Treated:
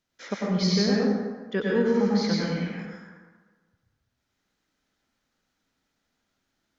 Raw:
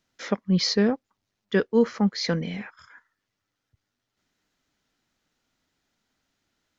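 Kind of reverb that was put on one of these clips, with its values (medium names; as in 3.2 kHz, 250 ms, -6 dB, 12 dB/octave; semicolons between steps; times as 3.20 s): plate-style reverb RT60 1.4 s, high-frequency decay 0.55×, pre-delay 85 ms, DRR -4.5 dB; trim -6 dB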